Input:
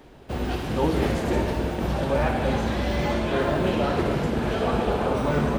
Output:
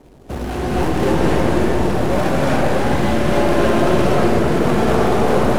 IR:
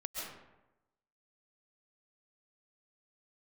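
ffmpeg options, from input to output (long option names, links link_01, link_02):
-filter_complex "[0:a]adynamicsmooth=sensitivity=7:basefreq=550,acrusher=bits=3:mode=log:mix=0:aa=0.000001,aeval=exprs='0.266*(cos(1*acos(clip(val(0)/0.266,-1,1)))-cos(1*PI/2))+0.0531*(cos(5*acos(clip(val(0)/0.266,-1,1)))-cos(5*PI/2))+0.015*(cos(8*acos(clip(val(0)/0.266,-1,1)))-cos(8*PI/2))':channel_layout=same[link_01];[1:a]atrim=start_sample=2205,afade=type=out:start_time=0.36:duration=0.01,atrim=end_sample=16317,asetrate=24696,aresample=44100[link_02];[link_01][link_02]afir=irnorm=-1:irlink=0,volume=-1dB"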